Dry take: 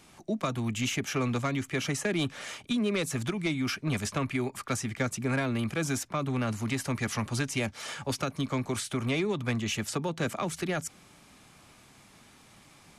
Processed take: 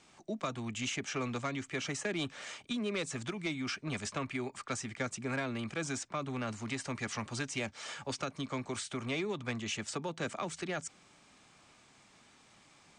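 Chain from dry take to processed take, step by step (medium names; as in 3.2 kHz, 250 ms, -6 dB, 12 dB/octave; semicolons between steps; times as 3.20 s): steep low-pass 9 kHz 72 dB/octave; bass shelf 210 Hz -7.5 dB; trim -4.5 dB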